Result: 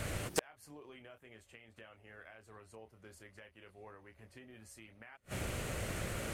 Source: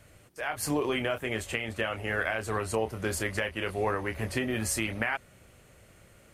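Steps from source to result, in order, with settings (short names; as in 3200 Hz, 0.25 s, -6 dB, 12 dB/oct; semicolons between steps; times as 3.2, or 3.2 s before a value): flipped gate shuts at -31 dBFS, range -42 dB; Doppler distortion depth 0.29 ms; gain +17 dB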